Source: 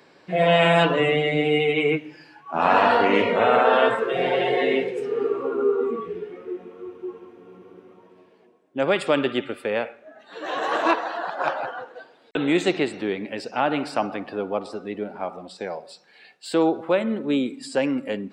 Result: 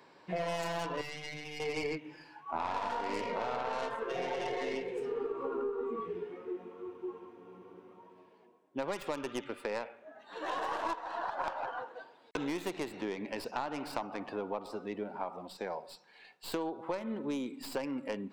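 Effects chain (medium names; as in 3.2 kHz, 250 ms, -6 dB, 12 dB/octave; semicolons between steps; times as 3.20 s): tracing distortion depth 0.23 ms; peaking EQ 960 Hz +9 dB 0.34 oct; compression 10:1, threshold -25 dBFS, peak gain reduction 16.5 dB; 1.01–1.60 s: peaking EQ 440 Hz -14.5 dB 2.5 oct; trim -7 dB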